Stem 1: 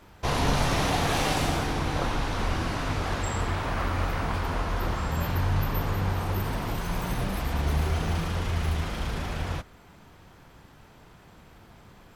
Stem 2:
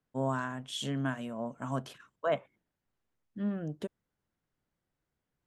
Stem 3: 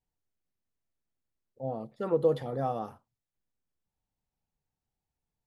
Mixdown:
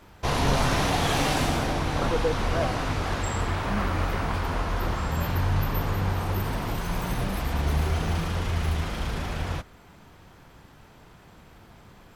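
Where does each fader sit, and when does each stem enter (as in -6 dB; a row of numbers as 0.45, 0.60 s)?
+1.0, 0.0, -2.0 dB; 0.00, 0.30, 0.00 s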